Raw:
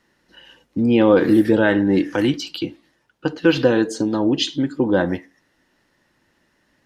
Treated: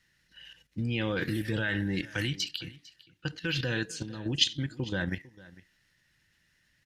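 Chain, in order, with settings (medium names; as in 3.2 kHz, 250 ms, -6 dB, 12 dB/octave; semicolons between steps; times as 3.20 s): high-order bell 510 Hz -15.5 dB 2.8 oct; level held to a coarse grid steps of 10 dB; delay 451 ms -20.5 dB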